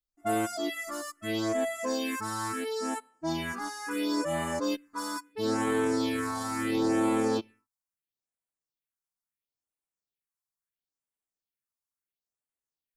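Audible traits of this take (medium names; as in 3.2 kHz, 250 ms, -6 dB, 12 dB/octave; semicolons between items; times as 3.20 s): phasing stages 4, 0.74 Hz, lowest notch 410–5000 Hz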